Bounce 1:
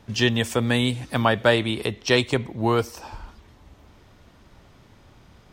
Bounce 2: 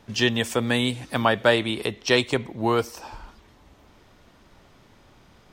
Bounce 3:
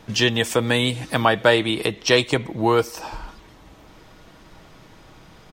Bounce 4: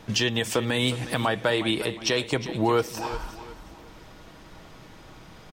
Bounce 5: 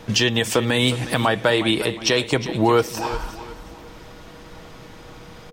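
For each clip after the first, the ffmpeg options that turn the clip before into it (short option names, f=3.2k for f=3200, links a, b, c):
-af "equalizer=f=75:w=0.62:g=-6.5"
-filter_complex "[0:a]aecho=1:1:6.3:0.32,asplit=2[a][b];[b]acompressor=threshold=-29dB:ratio=6,volume=-1dB[c];[a][c]amix=inputs=2:normalize=0,volume=1dB"
-af "alimiter=limit=-12.5dB:level=0:latency=1:release=240,aecho=1:1:361|722|1083:0.211|0.0697|0.023"
-af "aeval=exprs='val(0)+0.002*sin(2*PI*480*n/s)':c=same,volume=5.5dB"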